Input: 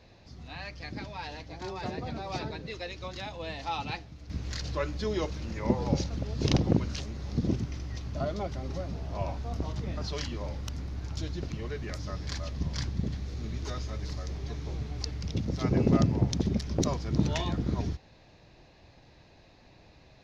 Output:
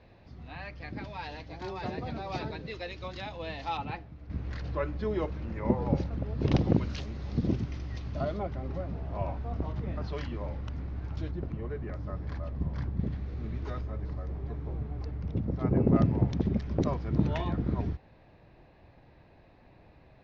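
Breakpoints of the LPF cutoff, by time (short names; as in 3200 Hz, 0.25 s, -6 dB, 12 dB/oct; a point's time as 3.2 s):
2600 Hz
from 1.04 s 4000 Hz
from 3.77 s 1900 Hz
from 6.52 s 3800 Hz
from 8.36 s 2100 Hz
from 11.31 s 1300 Hz
from 12.99 s 2000 Hz
from 13.81 s 1300 Hz
from 15.96 s 2100 Hz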